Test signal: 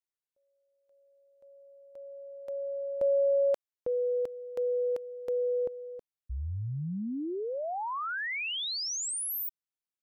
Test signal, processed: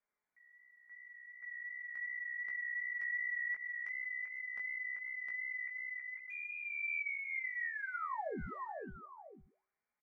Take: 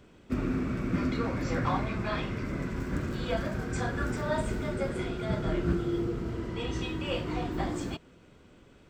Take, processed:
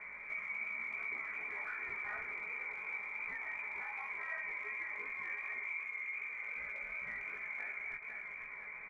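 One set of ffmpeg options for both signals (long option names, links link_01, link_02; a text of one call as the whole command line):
ffmpeg -i in.wav -filter_complex "[0:a]highpass=frequency=77:width=0.5412,highpass=frequency=77:width=1.3066,lowpass=frequency=2100:width_type=q:width=0.5098,lowpass=frequency=2100:width_type=q:width=0.6013,lowpass=frequency=2100:width_type=q:width=0.9,lowpass=frequency=2100:width_type=q:width=2.563,afreqshift=-2500,lowshelf=frequency=210:gain=4,asplit=2[link_01][link_02];[link_02]aecho=0:1:498|996:0.119|0.0261[link_03];[link_01][link_03]amix=inputs=2:normalize=0,acompressor=threshold=-52dB:ratio=5:attack=0.17:release=112:knee=6:detection=peak,aecho=1:1:4.8:0.38,flanger=delay=15.5:depth=4.1:speed=2.7,bandreject=frequency=381.7:width_type=h:width=4,bandreject=frequency=763.4:width_type=h:width=4,bandreject=frequency=1145.1:width_type=h:width=4,volume=14dB" out.wav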